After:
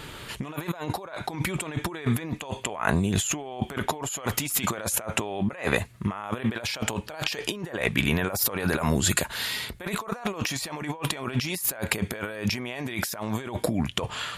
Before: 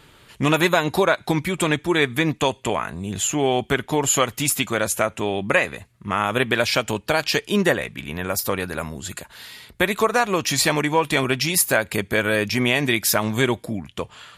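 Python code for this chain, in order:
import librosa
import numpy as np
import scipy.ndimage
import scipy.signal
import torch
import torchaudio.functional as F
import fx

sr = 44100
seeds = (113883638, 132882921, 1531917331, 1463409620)

y = fx.dynamic_eq(x, sr, hz=820.0, q=0.79, threshold_db=-33.0, ratio=4.0, max_db=7)
y = fx.over_compress(y, sr, threshold_db=-31.0, ratio=-1.0)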